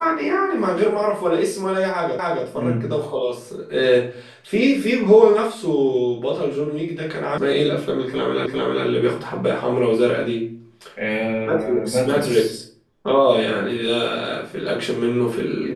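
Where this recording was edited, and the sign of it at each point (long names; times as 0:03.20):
0:02.19: the same again, the last 0.27 s
0:07.38: cut off before it has died away
0:08.46: the same again, the last 0.4 s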